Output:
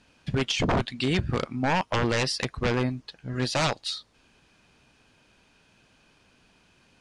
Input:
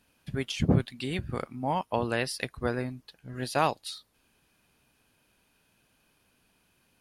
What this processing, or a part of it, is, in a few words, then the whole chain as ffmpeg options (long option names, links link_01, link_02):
synthesiser wavefolder: -af "aeval=exprs='0.0531*(abs(mod(val(0)/0.0531+3,4)-2)-1)':channel_layout=same,lowpass=frequency=7500:width=0.5412,lowpass=frequency=7500:width=1.3066,volume=8dB"